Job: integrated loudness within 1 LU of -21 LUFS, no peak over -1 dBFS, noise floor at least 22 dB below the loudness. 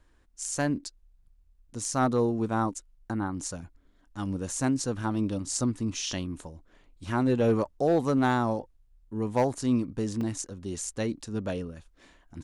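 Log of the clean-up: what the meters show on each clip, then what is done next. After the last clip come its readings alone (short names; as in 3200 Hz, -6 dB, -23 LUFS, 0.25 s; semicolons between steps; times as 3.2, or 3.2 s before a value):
clipped 0.3%; flat tops at -16.5 dBFS; dropouts 2; longest dropout 2.6 ms; loudness -29.5 LUFS; peak -16.5 dBFS; loudness target -21.0 LUFS
-> clip repair -16.5 dBFS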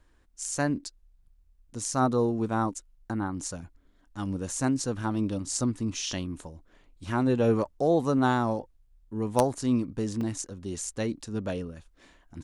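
clipped 0.0%; dropouts 2; longest dropout 2.6 ms
-> interpolate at 4.51/10.21, 2.6 ms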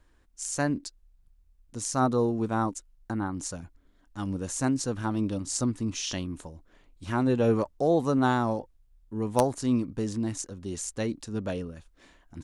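dropouts 0; loudness -29.0 LUFS; peak -7.5 dBFS; loudness target -21.0 LUFS
-> gain +8 dB; limiter -1 dBFS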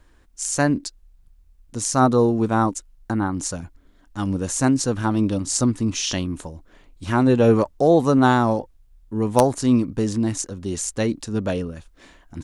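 loudness -21.0 LUFS; peak -1.0 dBFS; noise floor -54 dBFS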